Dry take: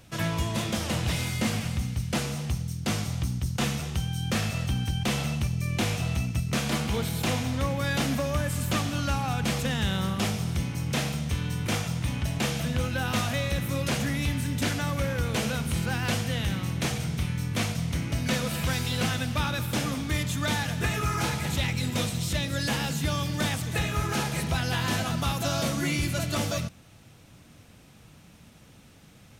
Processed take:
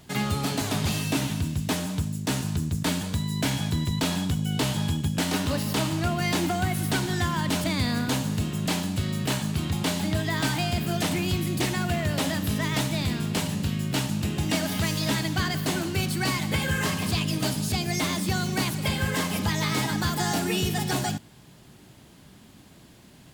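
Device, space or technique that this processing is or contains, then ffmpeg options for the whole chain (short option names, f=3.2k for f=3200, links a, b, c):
nightcore: -af "asetrate=55566,aresample=44100,volume=1.5dB"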